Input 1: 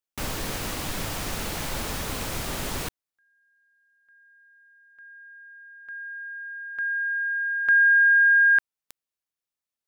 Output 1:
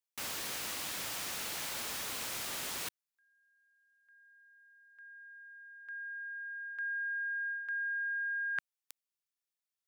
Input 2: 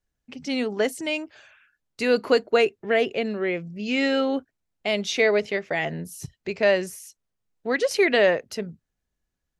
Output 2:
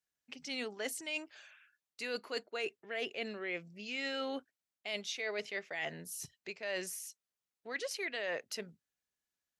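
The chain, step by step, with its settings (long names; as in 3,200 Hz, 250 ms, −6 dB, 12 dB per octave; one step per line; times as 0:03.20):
high-pass filter 250 Hz 6 dB per octave
tilt shelving filter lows −5 dB, about 1,100 Hz
reversed playback
downward compressor 12 to 1, threshold −27 dBFS
reversed playback
level −7.5 dB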